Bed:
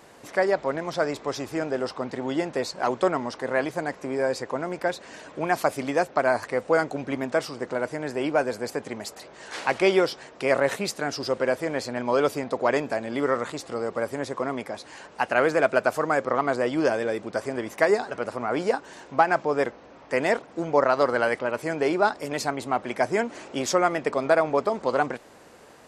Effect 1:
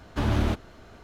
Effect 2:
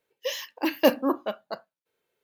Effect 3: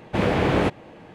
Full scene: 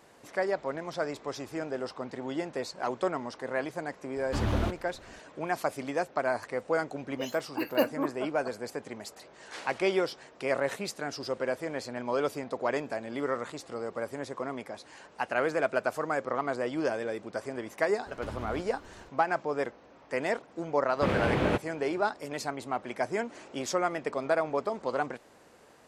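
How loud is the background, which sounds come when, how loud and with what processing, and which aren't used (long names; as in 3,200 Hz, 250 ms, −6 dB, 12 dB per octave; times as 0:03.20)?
bed −7 dB
0:04.16: mix in 1 −4.5 dB
0:06.94: mix in 2 −6.5 dB + noise reduction from a noise print of the clip's start 20 dB
0:18.06: mix in 1 −3.5 dB + downward compressor 5 to 1, threshold −34 dBFS
0:20.88: mix in 3 −7 dB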